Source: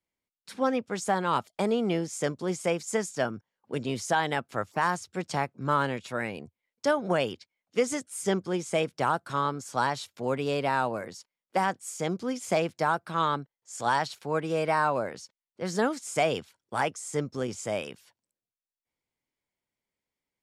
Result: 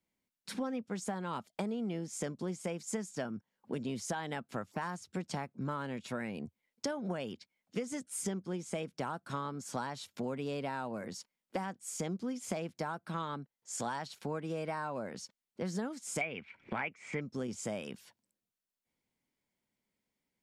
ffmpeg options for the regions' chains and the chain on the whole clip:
ffmpeg -i in.wav -filter_complex "[0:a]asettb=1/sr,asplit=3[link_01][link_02][link_03];[link_01]atrim=end=16.214[link_04];[link_02]atrim=start=16.21:end=17.21,asetpts=PTS-STARTPTS,afade=type=in:duration=0.004:curve=qsin,afade=type=out:start_time=0.996:duration=0.004:curve=qsin,lowpass=frequency=2300:width_type=q:width=9.8,acompressor=mode=upward:threshold=-33dB:ratio=2.5:attack=3.2:release=140:knee=2.83:detection=peak[link_05];[link_03]atrim=start=17.206[link_06];[link_04][link_05]acrossfade=duration=0.004:curve1=hsin:curve2=qsin[link_07];[link_07][link_06]acrossfade=duration=0.004:curve1=qsin:curve2=hsin,equalizer=frequency=210:width_type=o:width=0.89:gain=8.5,bandreject=frequency=1200:width=25,acompressor=threshold=-36dB:ratio=6,volume=1dB" out.wav

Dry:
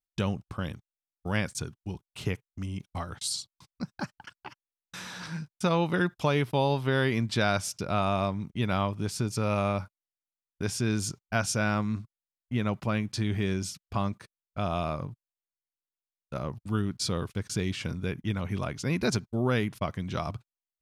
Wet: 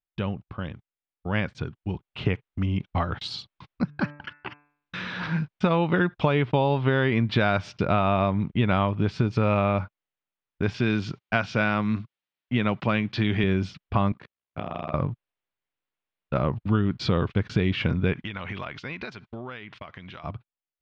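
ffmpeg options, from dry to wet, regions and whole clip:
ffmpeg -i in.wav -filter_complex "[0:a]asettb=1/sr,asplit=3[link_01][link_02][link_03];[link_01]atrim=end=3.844[link_04];[link_02]atrim=start=3.84:end=5.18,asetpts=PTS-STARTPTS,afade=type=in:duration=0.004:curve=qsin,afade=type=out:start_time=1.336:duration=0.004:curve=qsin,equalizer=frequency=810:width_type=o:width=0.66:gain=-8.5,bandreject=frequency=146.3:width_type=h:width=4,bandreject=frequency=292.6:width_type=h:width=4,bandreject=frequency=438.9:width_type=h:width=4,bandreject=frequency=585.2:width_type=h:width=4,bandreject=frequency=731.5:width_type=h:width=4,bandreject=frequency=877.8:width_type=h:width=4,bandreject=frequency=1024.1:width_type=h:width=4,bandreject=frequency=1170.4:width_type=h:width=4,bandreject=frequency=1316.7:width_type=h:width=4,bandreject=frequency=1463:width_type=h:width=4,bandreject=frequency=1609.3:width_type=h:width=4,bandreject=frequency=1755.6:width_type=h:width=4,bandreject=frequency=1901.9:width_type=h:width=4,bandreject=frequency=2048.2:width_type=h:width=4,bandreject=frequency=2194.5:width_type=h:width=4,bandreject=frequency=2340.8:width_type=h:width=4,bandreject=frequency=2487.1:width_type=h:width=4,bandreject=frequency=2633.4:width_type=h:width=4[link_05];[link_03]atrim=start=5.176[link_06];[link_04][link_05]acrossfade=duration=0.004:curve1=hsin:curve2=qsin[link_07];[link_07][link_06]acrossfade=duration=0.004:curve1=qsin:curve2=hsin,asettb=1/sr,asplit=3[link_08][link_09][link_10];[link_08]atrim=end=10.744[link_11];[link_09]atrim=start=10.74:end=13.44,asetpts=PTS-STARTPTS,afade=type=in:duration=0.004:curve=qsin,afade=type=out:start_time=2.696:duration=0.004:curve=qsin,highpass=110,acrossover=split=4500[link_12][link_13];[link_13]acompressor=threshold=-49dB:ratio=4:attack=1:release=60[link_14];[link_12][link_14]amix=inputs=2:normalize=0,highshelf=frequency=3000:gain=11.5[link_15];[link_10]atrim=start=13.436[link_16];[link_11][link_15]acrossfade=duration=0.004:curve1=hsin:curve2=qsin[link_17];[link_17][link_16]acrossfade=duration=0.004:curve1=qsin:curve2=hsin,asettb=1/sr,asplit=3[link_18][link_19][link_20];[link_18]atrim=end=14.124[link_21];[link_19]atrim=start=14.12:end=14.94,asetpts=PTS-STARTPTS,afade=type=in:duration=0.004:curve=qsin,afade=type=out:start_time=0.816:duration=0.004:curve=qsin,tremolo=f=61:d=1,highpass=110,acompressor=threshold=-37dB:ratio=6:attack=3.2:release=140:knee=1:detection=peak[link_22];[link_20]atrim=start=14.936[link_23];[link_21][link_22]acrossfade=duration=0.004:curve1=hsin:curve2=qsin[link_24];[link_24][link_23]acrossfade=duration=0.004:curve1=qsin:curve2=hsin,asettb=1/sr,asplit=3[link_25][link_26][link_27];[link_25]atrim=end=18.134[link_28];[link_26]atrim=start=18.13:end=20.24,asetpts=PTS-STARTPTS,afade=type=in:duration=0.004:curve=qsin,afade=type=out:start_time=2.106:duration=0.004:curve=qsin,tiltshelf=frequency=710:gain=-8,acompressor=threshold=-38dB:ratio=16:attack=3.2:release=140:knee=1:detection=peak[link_29];[link_27]atrim=start=20.236[link_30];[link_28][link_29]acrossfade=duration=0.004:curve1=hsin:curve2=qsin[link_31];[link_31][link_30]acrossfade=duration=0.004:curve1=qsin:curve2=hsin,dynaudnorm=framelen=230:gausssize=17:maxgain=11dB,lowpass=frequency=3300:width=0.5412,lowpass=frequency=3300:width=1.3066,acompressor=threshold=-18dB:ratio=6" out.wav

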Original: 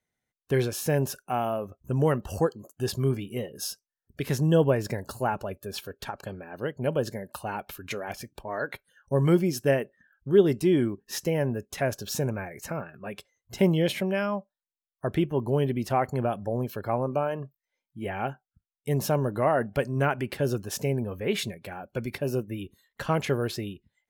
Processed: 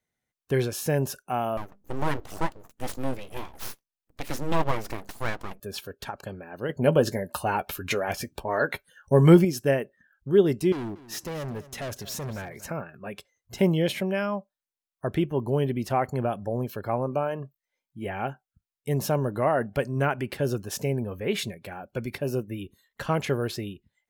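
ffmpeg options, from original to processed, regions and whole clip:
ffmpeg -i in.wav -filter_complex "[0:a]asettb=1/sr,asplit=3[link_01][link_02][link_03];[link_01]atrim=end=1.574[link_04];[link_02]atrim=start=1.57:end=5.6,asetpts=PTS-STARTPTS,afade=type=in:duration=0.004:curve=qsin,afade=type=out:start_time=4.026:duration=0.004:curve=qsin,highpass=frequency=110:poles=1,bandreject=frequency=50:width_type=h:width=6,bandreject=frequency=100:width_type=h:width=6,bandreject=frequency=150:width_type=h:width=6,aeval=exprs='abs(val(0))':channel_layout=same[link_05];[link_03]atrim=start=5.596[link_06];[link_04][link_05]acrossfade=duration=0.004:curve1=hsin:curve2=qsin[link_07];[link_07][link_06]acrossfade=duration=0.004:curve1=qsin:curve2=hsin,asettb=1/sr,asplit=3[link_08][link_09][link_10];[link_08]atrim=end=6.694[link_11];[link_09]atrim=start=6.69:end=9.45,asetpts=PTS-STARTPTS,afade=type=in:duration=0.004:curve=qsin,afade=type=out:start_time=2.756:duration=0.004:curve=qsin,asplit=2[link_12][link_13];[link_13]adelay=12,volume=-11dB[link_14];[link_12][link_14]amix=inputs=2:normalize=0,atrim=end_sample=121716,acontrast=57[link_15];[link_10]atrim=start=9.446[link_16];[link_11][link_15]acrossfade=duration=0.004:curve1=hsin:curve2=qsin[link_17];[link_17][link_16]acrossfade=duration=0.004:curve1=qsin:curve2=hsin,asettb=1/sr,asplit=3[link_18][link_19][link_20];[link_18]atrim=end=10.724[link_21];[link_19]atrim=start=10.72:end=12.66,asetpts=PTS-STARTPTS,afade=type=in:duration=0.004:curve=qsin,afade=type=out:start_time=1.936:duration=0.004:curve=qsin,asoftclip=type=hard:threshold=-31dB,aecho=1:1:235|470:0.141|0.0367,atrim=end_sample=85554[link_22];[link_20]atrim=start=12.656[link_23];[link_21][link_22]acrossfade=duration=0.004:curve1=hsin:curve2=qsin[link_24];[link_24][link_23]acrossfade=duration=0.004:curve1=qsin:curve2=hsin" out.wav

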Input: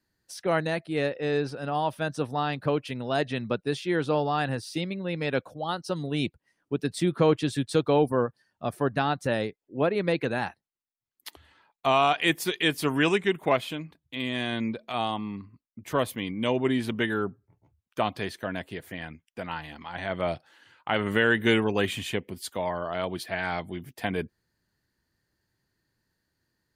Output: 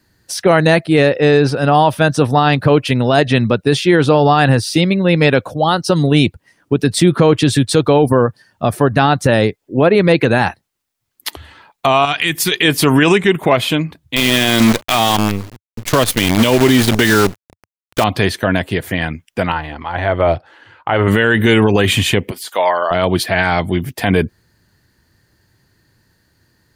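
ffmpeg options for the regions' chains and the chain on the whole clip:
ffmpeg -i in.wav -filter_complex "[0:a]asettb=1/sr,asplit=3[link_01][link_02][link_03];[link_01]atrim=end=12.054[link_04];[link_02]atrim=start=12.05:end=12.52,asetpts=PTS-STARTPTS,afade=type=in:duration=0.004:curve=qsin,afade=type=out:start_time=0.466:duration=0.004:curve=qsin,equalizer=frequency=580:width=0.68:gain=-10.5,acompressor=threshold=-29dB:ratio=6:attack=3.2:release=140:knee=1:detection=peak[link_05];[link_03]atrim=start=12.516[link_06];[link_04][link_05]acrossfade=duration=0.004:curve1=hsin:curve2=qsin[link_07];[link_07][link_06]acrossfade=duration=0.004:curve1=qsin:curve2=hsin,asettb=1/sr,asplit=3[link_08][link_09][link_10];[link_08]atrim=end=14.164[link_11];[link_09]atrim=start=14.16:end=18.04,asetpts=PTS-STARTPTS,afade=type=in:duration=0.004:curve=qsin,afade=type=out:start_time=3.876:duration=0.004:curve=qsin,equalizer=frequency=5000:width_type=o:width=1.8:gain=6.5,acrusher=bits=6:dc=4:mix=0:aa=0.000001[link_12];[link_10]atrim=start=18.036[link_13];[link_11][link_12]acrossfade=duration=0.004:curve1=hsin:curve2=qsin[link_14];[link_14][link_13]acrossfade=duration=0.004:curve1=qsin:curve2=hsin,asettb=1/sr,asplit=3[link_15][link_16][link_17];[link_15]atrim=end=19.524[link_18];[link_16]atrim=start=19.52:end=21.08,asetpts=PTS-STARTPTS,afade=type=in:duration=0.004:curve=qsin,afade=type=out:start_time=1.556:duration=0.004:curve=qsin,lowpass=frequency=1200:poles=1,equalizer=frequency=190:width_type=o:width=0.82:gain=-10.5[link_19];[link_17]atrim=start=21.076[link_20];[link_18][link_19]acrossfade=duration=0.004:curve1=hsin:curve2=qsin[link_21];[link_21][link_20]acrossfade=duration=0.004:curve1=qsin:curve2=hsin,asettb=1/sr,asplit=3[link_22][link_23][link_24];[link_22]atrim=end=22.314[link_25];[link_23]atrim=start=22.31:end=22.91,asetpts=PTS-STARTPTS,afade=type=in:duration=0.004:curve=qsin,afade=type=out:start_time=0.596:duration=0.004:curve=qsin,highpass=620,deesser=0.9[link_26];[link_24]atrim=start=22.906[link_27];[link_25][link_26]acrossfade=duration=0.004:curve1=hsin:curve2=qsin[link_28];[link_28][link_27]acrossfade=duration=0.004:curve1=qsin:curve2=hsin,equalizer=frequency=97:width_type=o:width=0.95:gain=5,alimiter=level_in=19dB:limit=-1dB:release=50:level=0:latency=1,volume=-1dB" out.wav

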